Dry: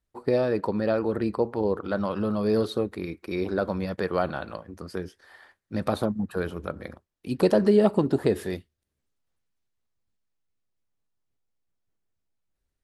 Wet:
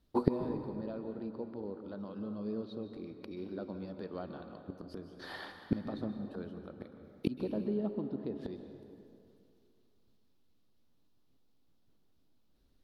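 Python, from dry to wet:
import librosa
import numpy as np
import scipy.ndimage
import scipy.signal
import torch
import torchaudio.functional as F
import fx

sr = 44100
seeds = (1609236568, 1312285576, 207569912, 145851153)

p1 = fx.graphic_eq_10(x, sr, hz=(250, 2000, 4000, 8000), db=(9, -7, 7, -11))
p2 = fx.env_lowpass_down(p1, sr, base_hz=2800.0, full_db=-13.5)
p3 = fx.rider(p2, sr, range_db=5, speed_s=2.0)
p4 = p2 + (p3 * librosa.db_to_amplitude(0.0))
p5 = fx.gate_flip(p4, sr, shuts_db=-18.0, range_db=-28)
p6 = fx.rev_plate(p5, sr, seeds[0], rt60_s=2.5, hf_ratio=0.6, predelay_ms=120, drr_db=7.0)
y = p6 * librosa.db_to_amplitude(1.5)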